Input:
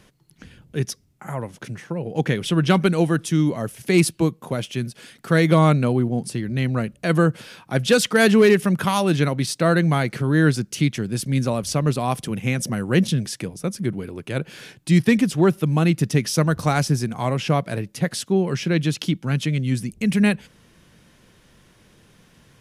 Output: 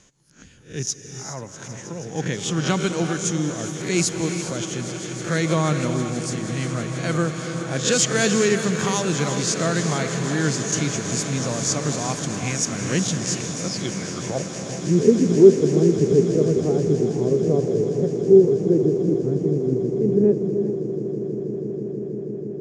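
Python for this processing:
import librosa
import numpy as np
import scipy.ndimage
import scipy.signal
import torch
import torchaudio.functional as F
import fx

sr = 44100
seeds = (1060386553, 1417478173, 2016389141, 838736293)

p1 = fx.spec_swells(x, sr, rise_s=0.32)
p2 = fx.filter_sweep_lowpass(p1, sr, from_hz=6800.0, to_hz=410.0, start_s=13.62, end_s=14.56, q=7.9)
p3 = p2 + fx.echo_swell(p2, sr, ms=161, loudest=8, wet_db=-18, dry=0)
p4 = fx.rev_gated(p3, sr, seeds[0], gate_ms=440, shape='rising', drr_db=7.5)
y = p4 * 10.0 ** (-6.0 / 20.0)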